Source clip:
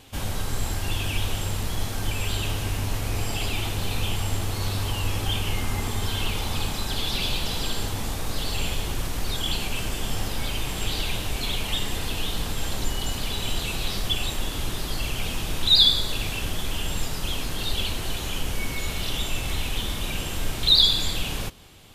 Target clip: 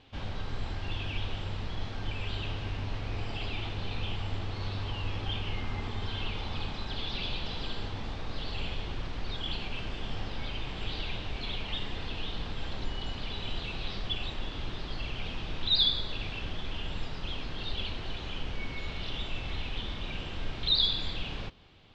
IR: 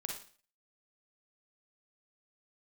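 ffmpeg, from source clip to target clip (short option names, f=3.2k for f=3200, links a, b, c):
-af "lowpass=f=4.3k:w=0.5412,lowpass=f=4.3k:w=1.3066,volume=-7.5dB"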